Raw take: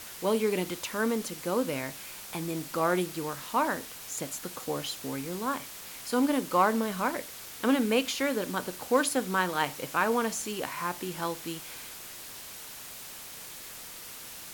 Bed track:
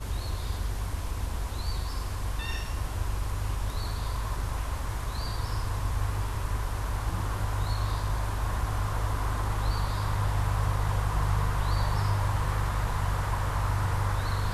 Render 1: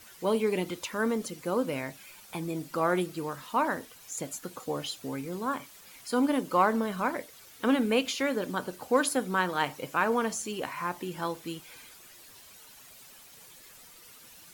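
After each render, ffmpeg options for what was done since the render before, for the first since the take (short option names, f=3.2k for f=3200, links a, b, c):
-af "afftdn=nr=11:nf=-44"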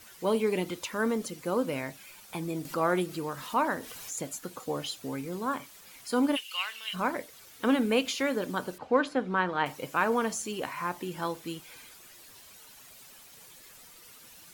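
-filter_complex "[0:a]asettb=1/sr,asplit=3[a][b][c];[a]atrim=end=2.654[d];[b]atrim=start=2.65:end=4.28,asetpts=PTS-STARTPTS,afade=t=in:d=0.004:c=qsin,afade=t=out:st=1.626:d=0.004:c=qsin,acompressor=mode=upward:threshold=-33dB:ratio=2.5:attack=3.2:release=140:knee=2.83:detection=peak[e];[c]atrim=start=4.276[f];[d][e]acrossfade=d=0.004:c1=hsin:c2=qsin[g];[g][f]acrossfade=d=0.004:c1=qsin:c2=hsin,asplit=3[h][i][j];[h]afade=t=out:st=6.35:d=0.02[k];[i]highpass=f=2.8k:t=q:w=10,afade=t=in:st=6.35:d=0.02,afade=t=out:st=6.93:d=0.02[l];[j]afade=t=in:st=6.93:d=0.02[m];[k][l][m]amix=inputs=3:normalize=0,asettb=1/sr,asplit=3[n][o][p];[n]atrim=end=8.784[q];[o]atrim=start=8.78:end=9.66,asetpts=PTS-STARTPTS,afade=t=in:d=0.004:c=qsin,afade=t=out:st=0.876:d=0.004:c=qsin,lowpass=2.9k[r];[p]atrim=start=9.656[s];[q][r]acrossfade=d=0.004:c1=hsin:c2=qsin[t];[t][s]acrossfade=d=0.004:c1=qsin:c2=hsin"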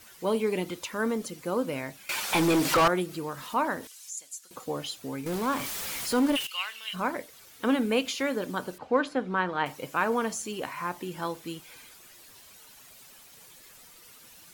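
-filter_complex "[0:a]asettb=1/sr,asplit=3[a][b][c];[a]atrim=end=2.094[d];[b]atrim=start=2.09:end=2.88,asetpts=PTS-STARTPTS,afade=t=in:d=0.004:c=qsin,afade=t=out:st=0.786:d=0.004:c=qsin,asplit=2[e][f];[f]highpass=f=720:p=1,volume=31dB,asoftclip=type=tanh:threshold=-14dB[g];[e][g]amix=inputs=2:normalize=0,lowpass=f=4.4k:p=1,volume=-6dB[h];[c]atrim=start=2.876[i];[d][h]acrossfade=d=0.004:c1=hsin:c2=qsin[j];[j][i]acrossfade=d=0.004:c1=qsin:c2=hsin,asettb=1/sr,asplit=3[k][l][m];[k]atrim=end=3.874[n];[l]atrim=start=3.87:end=4.51,asetpts=PTS-STARTPTS,afade=t=in:d=0.004:c=qsin,afade=t=out:st=0.636:d=0.004:c=qsin,bandpass=f=7.4k:t=q:w=1.1[o];[m]atrim=start=4.506[p];[n][o]acrossfade=d=0.004:c1=hsin:c2=qsin[q];[q][p]acrossfade=d=0.004:c1=qsin:c2=hsin,asettb=1/sr,asplit=3[r][s][t];[r]atrim=end=5.264[u];[s]atrim=start=5.26:end=6.47,asetpts=PTS-STARTPTS,afade=t=in:d=0.004:c=qsin,afade=t=out:st=1.206:d=0.004:c=qsin,aeval=exprs='val(0)+0.5*0.0316*sgn(val(0))':c=same[v];[t]atrim=start=6.466[w];[u][v]acrossfade=d=0.004:c1=hsin:c2=qsin[x];[x][w]acrossfade=d=0.004:c1=qsin:c2=hsin"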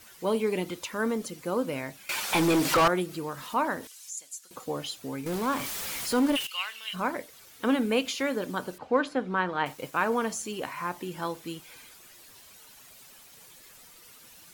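-filter_complex "[0:a]asettb=1/sr,asplit=3[a][b][c];[a]atrim=end=9.674[d];[b]atrim=start=9.67:end=10.08,asetpts=PTS-STARTPTS,afade=t=in:d=0.004:c=qsin,afade=t=out:st=0.406:d=0.004:c=qsin,aeval=exprs='val(0)*gte(abs(val(0)),0.00447)':c=same[e];[c]atrim=start=10.076[f];[d][e]acrossfade=d=0.004:c1=hsin:c2=qsin[g];[g][f]acrossfade=d=0.004:c1=qsin:c2=hsin"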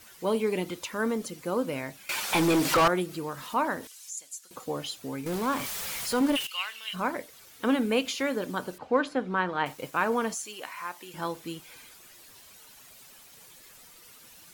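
-filter_complex "[0:a]asettb=1/sr,asplit=3[a][b][c];[a]atrim=end=5.654[d];[b]atrim=start=5.65:end=6.21,asetpts=PTS-STARTPTS,afade=t=in:d=0.004:c=qsin,afade=t=out:st=0.556:d=0.004:c=qsin,equalizer=f=300:w=4.3:g=-12.5[e];[c]atrim=start=6.206[f];[d][e]acrossfade=d=0.004:c1=hsin:c2=qsin[g];[g][f]acrossfade=d=0.004:c1=qsin:c2=hsin,asettb=1/sr,asplit=3[h][i][j];[h]atrim=end=10.344[k];[i]atrim=start=10.34:end=11.14,asetpts=PTS-STARTPTS,afade=t=in:d=0.004:c=qsin,afade=t=out:st=0.796:d=0.004:c=qsin,highpass=f=1.2k:p=1[l];[j]atrim=start=11.136[m];[k][l]acrossfade=d=0.004:c1=hsin:c2=qsin[n];[n][m]acrossfade=d=0.004:c1=qsin:c2=hsin"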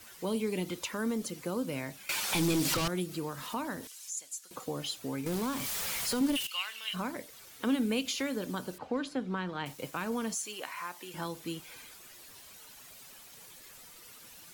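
-filter_complex "[0:a]acrossover=split=280|3000[a][b][c];[b]acompressor=threshold=-36dB:ratio=6[d];[a][d][c]amix=inputs=3:normalize=0"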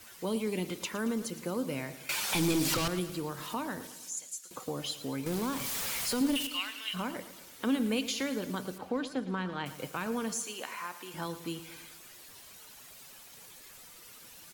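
-af "aecho=1:1:112|224|336|448|560:0.2|0.108|0.0582|0.0314|0.017"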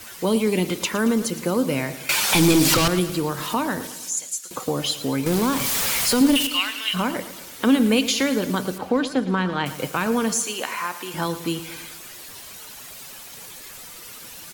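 -af "volume=12dB"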